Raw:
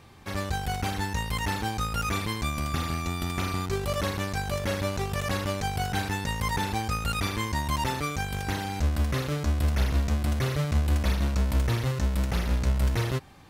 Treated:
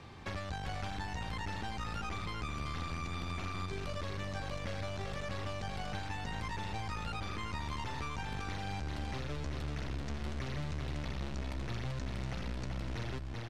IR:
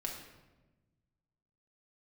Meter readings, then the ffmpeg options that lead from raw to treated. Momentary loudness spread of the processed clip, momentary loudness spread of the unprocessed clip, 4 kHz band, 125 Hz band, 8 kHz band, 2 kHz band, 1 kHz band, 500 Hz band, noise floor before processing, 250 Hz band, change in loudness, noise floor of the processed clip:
1 LU, 4 LU, −10.0 dB, −12.0 dB, −15.0 dB, −9.5 dB, −10.0 dB, −11.0 dB, −34 dBFS, −11.0 dB, −11.5 dB, −41 dBFS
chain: -filter_complex "[0:a]aeval=exprs='(tanh(17.8*val(0)+0.8)-tanh(0.8))/17.8':channel_layout=same,alimiter=level_in=7dB:limit=-24dB:level=0:latency=1:release=441,volume=-7dB,asplit=2[link_01][link_02];[link_02]aecho=0:1:385:0.501[link_03];[link_01][link_03]amix=inputs=2:normalize=0,acrossover=split=140|1800[link_04][link_05][link_06];[link_04]acompressor=threshold=-44dB:ratio=4[link_07];[link_05]acompressor=threshold=-47dB:ratio=4[link_08];[link_06]acompressor=threshold=-51dB:ratio=4[link_09];[link_07][link_08][link_09]amix=inputs=3:normalize=0,lowpass=5500,volume=6dB"

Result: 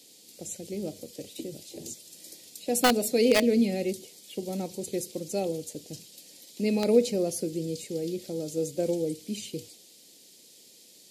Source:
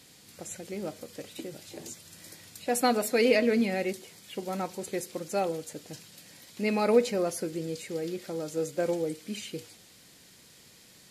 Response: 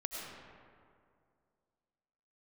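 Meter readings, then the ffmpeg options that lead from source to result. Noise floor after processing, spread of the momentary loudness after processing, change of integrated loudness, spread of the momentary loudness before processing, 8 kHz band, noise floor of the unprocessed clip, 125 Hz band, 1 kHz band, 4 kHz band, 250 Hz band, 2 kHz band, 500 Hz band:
−55 dBFS, 19 LU, +1.0 dB, 20 LU, +3.5 dB, −56 dBFS, +3.0 dB, −2.0 dB, +3.5 dB, +3.0 dB, −1.0 dB, +1.0 dB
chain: -filter_complex "[0:a]acrossover=split=250|640|2700[link_01][link_02][link_03][link_04];[link_01]agate=range=-22dB:threshold=-54dB:ratio=16:detection=peak[link_05];[link_03]acrusher=bits=3:mix=0:aa=0.000001[link_06];[link_05][link_02][link_06][link_04]amix=inputs=4:normalize=0,volume=3dB"

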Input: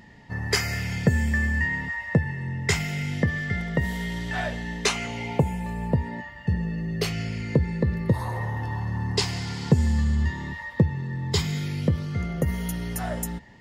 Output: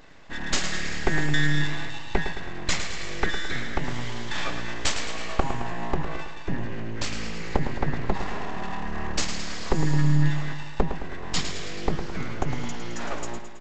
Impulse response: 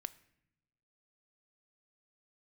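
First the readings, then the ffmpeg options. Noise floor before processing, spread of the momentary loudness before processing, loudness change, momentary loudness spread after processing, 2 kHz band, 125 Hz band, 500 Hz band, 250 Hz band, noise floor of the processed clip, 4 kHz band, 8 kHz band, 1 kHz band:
−43 dBFS, 7 LU, −3.0 dB, 10 LU, −1.5 dB, −5.0 dB, −2.0 dB, −3.5 dB, −32 dBFS, +1.0 dB, +1.0 dB, +2.5 dB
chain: -af "aecho=1:1:3.5:0.75,aresample=16000,aeval=exprs='abs(val(0))':channel_layout=same,aresample=44100,aecho=1:1:108|216|324|432|540|648|756:0.355|0.199|0.111|0.0623|0.0349|0.0195|0.0109"

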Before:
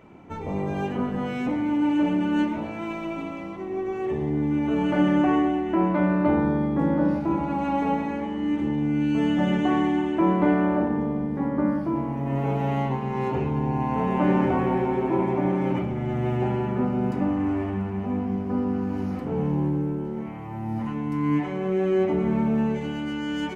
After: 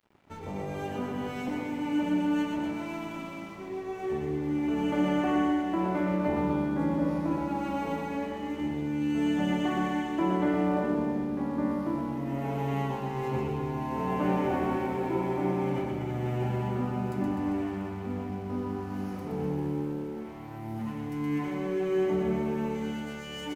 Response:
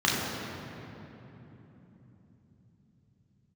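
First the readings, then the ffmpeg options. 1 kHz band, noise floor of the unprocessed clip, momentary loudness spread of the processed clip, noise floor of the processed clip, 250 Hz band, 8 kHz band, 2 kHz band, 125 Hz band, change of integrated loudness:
−5.0 dB, −33 dBFS, 9 LU, −40 dBFS, −6.0 dB, can't be measured, −4.5 dB, −6.5 dB, −5.5 dB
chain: -af "aemphasis=mode=production:type=50kf,aeval=exprs='sgn(val(0))*max(abs(val(0))-0.00473,0)':channel_layout=same,aecho=1:1:120|252|397.2|556.9|732.6:0.631|0.398|0.251|0.158|0.1,volume=-7dB"

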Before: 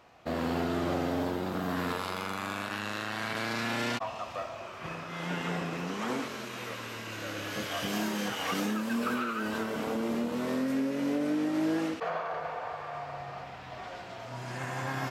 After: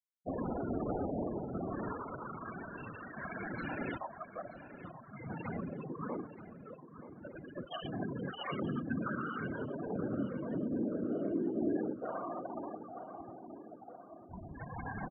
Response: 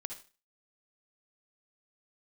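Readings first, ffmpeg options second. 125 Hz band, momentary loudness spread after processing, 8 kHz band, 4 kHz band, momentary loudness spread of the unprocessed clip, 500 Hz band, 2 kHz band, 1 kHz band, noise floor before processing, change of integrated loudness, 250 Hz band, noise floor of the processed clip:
−4.0 dB, 15 LU, below −35 dB, −15.5 dB, 10 LU, −5.0 dB, −10.5 dB, −8.0 dB, −43 dBFS, −6.0 dB, −5.5 dB, −55 dBFS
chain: -filter_complex "[0:a]afftfilt=real='hypot(re,im)*cos(2*PI*random(0))':imag='hypot(re,im)*sin(2*PI*random(1))':win_size=512:overlap=0.75,afftfilt=real='re*gte(hypot(re,im),0.0251)':imag='im*gte(hypot(re,im),0.0251)':win_size=1024:overlap=0.75,asplit=2[link_01][link_02];[link_02]adelay=928,lowpass=frequency=3400:poles=1,volume=-12.5dB,asplit=2[link_03][link_04];[link_04]adelay=928,lowpass=frequency=3400:poles=1,volume=0.52,asplit=2[link_05][link_06];[link_06]adelay=928,lowpass=frequency=3400:poles=1,volume=0.52,asplit=2[link_07][link_08];[link_08]adelay=928,lowpass=frequency=3400:poles=1,volume=0.52,asplit=2[link_09][link_10];[link_10]adelay=928,lowpass=frequency=3400:poles=1,volume=0.52[link_11];[link_01][link_03][link_05][link_07][link_09][link_11]amix=inputs=6:normalize=0,volume=1dB"

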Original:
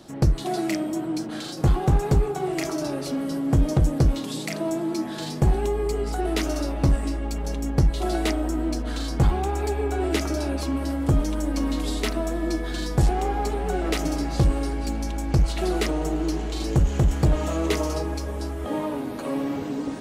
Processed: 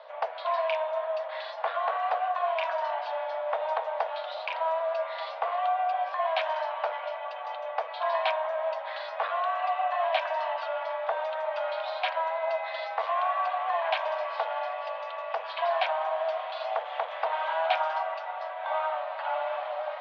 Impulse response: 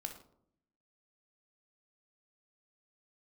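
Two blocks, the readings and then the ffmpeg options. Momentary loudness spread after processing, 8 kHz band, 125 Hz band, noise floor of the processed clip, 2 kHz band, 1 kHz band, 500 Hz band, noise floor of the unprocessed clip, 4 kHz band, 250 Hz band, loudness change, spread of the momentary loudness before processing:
7 LU, below −30 dB, below −40 dB, −38 dBFS, +1.5 dB, +5.0 dB, −1.5 dB, −32 dBFS, −4.0 dB, below −40 dB, −5.0 dB, 7 LU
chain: -af "aeval=exprs='val(0)+0.0251*(sin(2*PI*60*n/s)+sin(2*PI*2*60*n/s)/2+sin(2*PI*3*60*n/s)/3+sin(2*PI*4*60*n/s)/4+sin(2*PI*5*60*n/s)/5)':channel_layout=same,highpass=frequency=320:width_type=q:width=0.5412,highpass=frequency=320:width_type=q:width=1.307,lowpass=frequency=3300:width_type=q:width=0.5176,lowpass=frequency=3300:width_type=q:width=0.7071,lowpass=frequency=3300:width_type=q:width=1.932,afreqshift=320"

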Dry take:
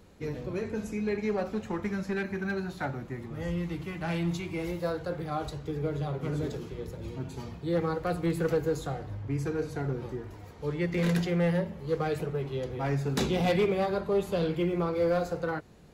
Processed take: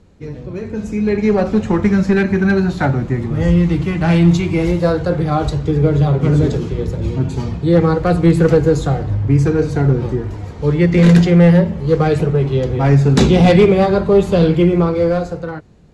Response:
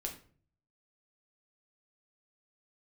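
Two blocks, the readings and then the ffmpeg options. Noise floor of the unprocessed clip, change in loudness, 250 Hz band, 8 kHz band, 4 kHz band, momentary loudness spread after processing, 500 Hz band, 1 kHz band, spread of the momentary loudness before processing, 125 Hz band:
−46 dBFS, +17.0 dB, +18.0 dB, can't be measured, +12.5 dB, 11 LU, +14.5 dB, +13.5 dB, 11 LU, +19.5 dB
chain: -af "lowpass=frequency=9400:width=0.5412,lowpass=frequency=9400:width=1.3066,lowshelf=frequency=300:gain=8.5,dynaudnorm=framelen=100:gausssize=21:maxgain=13.5dB,volume=1dB"

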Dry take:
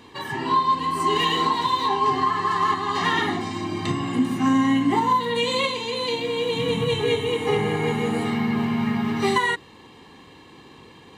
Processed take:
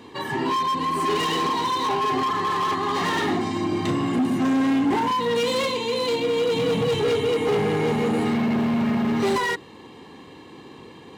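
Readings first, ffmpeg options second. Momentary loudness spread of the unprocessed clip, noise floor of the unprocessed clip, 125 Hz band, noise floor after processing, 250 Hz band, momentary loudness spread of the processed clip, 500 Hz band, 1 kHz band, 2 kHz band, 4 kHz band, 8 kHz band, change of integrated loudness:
5 LU, −48 dBFS, −0.5 dB, −45 dBFS, +1.0 dB, 3 LU, +2.0 dB, −2.0 dB, −2.0 dB, −2.0 dB, +1.0 dB, 0.0 dB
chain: -af "volume=23dB,asoftclip=hard,volume=-23dB,highpass=58,equalizer=frequency=360:width_type=o:width=2.4:gain=5.5"

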